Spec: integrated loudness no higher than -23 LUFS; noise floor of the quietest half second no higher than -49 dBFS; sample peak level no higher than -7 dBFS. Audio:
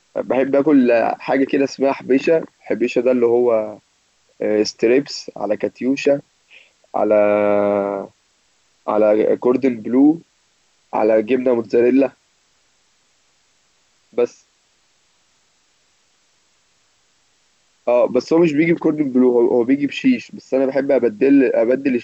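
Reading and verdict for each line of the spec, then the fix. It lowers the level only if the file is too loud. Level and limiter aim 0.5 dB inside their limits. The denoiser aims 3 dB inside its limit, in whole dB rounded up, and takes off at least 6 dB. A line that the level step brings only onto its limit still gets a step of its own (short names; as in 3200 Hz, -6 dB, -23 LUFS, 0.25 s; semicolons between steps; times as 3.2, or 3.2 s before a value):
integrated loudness -17.5 LUFS: fail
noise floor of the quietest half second -61 dBFS: OK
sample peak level -5.5 dBFS: fail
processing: gain -6 dB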